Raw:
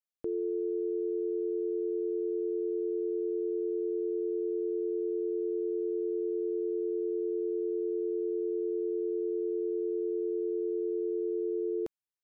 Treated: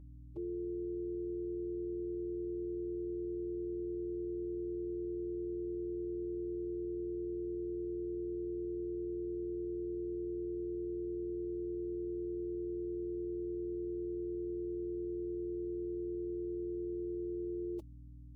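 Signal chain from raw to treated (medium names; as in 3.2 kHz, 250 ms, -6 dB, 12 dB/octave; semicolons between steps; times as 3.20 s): static phaser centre 320 Hz, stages 8; hum 60 Hz, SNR 12 dB; time stretch by phase-locked vocoder 1.5×; trim -4 dB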